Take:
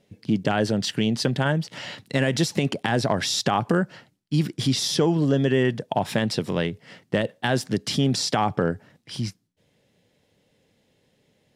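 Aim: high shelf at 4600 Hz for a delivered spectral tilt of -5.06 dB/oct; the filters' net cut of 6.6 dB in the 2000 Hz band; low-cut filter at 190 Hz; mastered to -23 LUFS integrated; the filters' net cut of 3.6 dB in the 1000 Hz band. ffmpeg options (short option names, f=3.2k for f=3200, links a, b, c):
-af "highpass=190,equalizer=f=1k:t=o:g=-3.5,equalizer=f=2k:t=o:g=-6.5,highshelf=f=4.6k:g=-5,volume=4dB"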